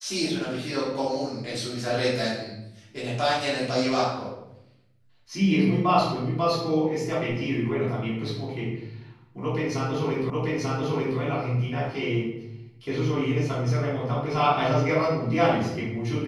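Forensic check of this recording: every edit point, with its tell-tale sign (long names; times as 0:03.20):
0:10.30: the same again, the last 0.89 s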